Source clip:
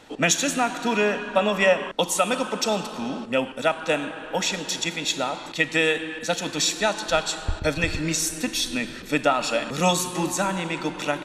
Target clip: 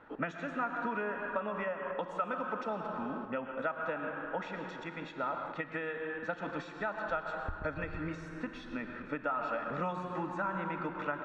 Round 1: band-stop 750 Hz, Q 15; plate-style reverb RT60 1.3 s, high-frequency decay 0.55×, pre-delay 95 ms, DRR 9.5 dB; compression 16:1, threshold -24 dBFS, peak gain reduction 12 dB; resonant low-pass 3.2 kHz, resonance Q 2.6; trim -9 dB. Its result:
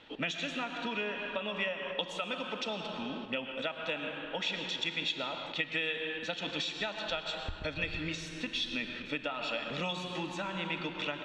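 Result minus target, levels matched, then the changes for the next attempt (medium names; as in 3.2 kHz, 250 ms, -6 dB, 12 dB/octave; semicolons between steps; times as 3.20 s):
4 kHz band +18.5 dB
change: resonant low-pass 1.4 kHz, resonance Q 2.6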